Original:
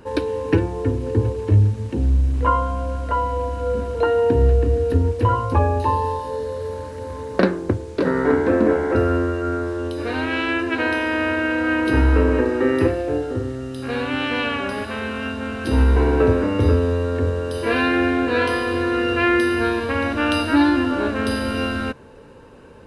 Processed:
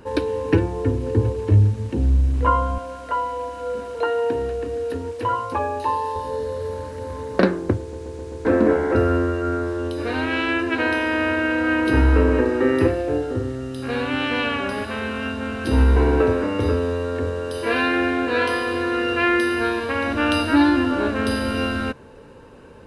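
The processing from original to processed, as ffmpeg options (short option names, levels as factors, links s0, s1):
-filter_complex "[0:a]asettb=1/sr,asplit=3[s0][s1][s2];[s0]atrim=end=2.784[s3];[s1]atrim=start=2.78:end=6.16,asetpts=PTS-STARTPTS,afade=t=in:d=0.004:c=qsin,afade=t=out:st=3.376:d=0.004:c=qsin,highpass=f=610:p=1[s4];[s2]atrim=start=6.156[s5];[s3][s4]acrossfade=d=0.004:c1=hsin:c2=qsin[s6];[s6][s5]acrossfade=d=0.004:c1=qsin:c2=hsin,asettb=1/sr,asplit=3[s7][s8][s9];[s7]atrim=end=16.214[s10];[s8]atrim=start=16.21:end=20.08,asetpts=PTS-STARTPTS,afade=t=in:d=0.004:c=qsin,afade=t=out:st=3.866:d=0.004:c=qsin,lowshelf=f=230:g=-7.5[s11];[s9]atrim=start=20.076[s12];[s10][s11]acrossfade=d=0.004:c1=hsin:c2=qsin[s13];[s13][s12]acrossfade=d=0.004:c1=qsin:c2=hsin,asplit=6[s14][s15][s16][s17][s18][s19];[s14]atrim=end=7.932[s20];[s15]atrim=start=7.798:end=7.932[s21];[s16]atrim=start=7.798:end=7.932[s22];[s17]atrim=start=7.798:end=7.932[s23];[s18]atrim=start=7.798:end=7.932[s24];[s19]atrim=start=8.448[s25];[s20][s21]acrossfade=d=0.004:c1=hsin:c2=hsin[s26];[s26][s22]acrossfade=d=0.004:c1=hsin:c2=hsin[s27];[s27][s23]acrossfade=d=0.004:c1=hsin:c2=hsin[s28];[s28][s24]acrossfade=d=0.004:c1=hsin:c2=hsin[s29];[s29][s25]acrossfade=d=0.004:c1=hsin:c2=hsin"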